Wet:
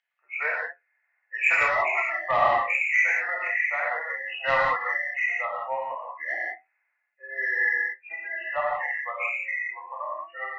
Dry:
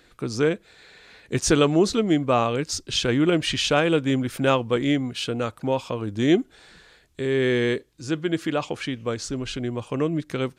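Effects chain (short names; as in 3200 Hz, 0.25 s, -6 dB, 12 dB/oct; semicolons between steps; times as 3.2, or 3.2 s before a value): nonlinear frequency compression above 1700 Hz 4:1; spectral noise reduction 30 dB; steep high-pass 640 Hz 48 dB/oct; 3.12–4.07 compressor 3:1, threshold -31 dBFS, peak gain reduction 10.5 dB; 5.8–6.4 ring modulator 39 Hz; flange 0.28 Hz, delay 9 ms, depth 7.4 ms, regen +68%; soft clip -23 dBFS, distortion -14 dB; air absorption 150 m; non-linear reverb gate 0.21 s flat, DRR -4 dB; gain +6 dB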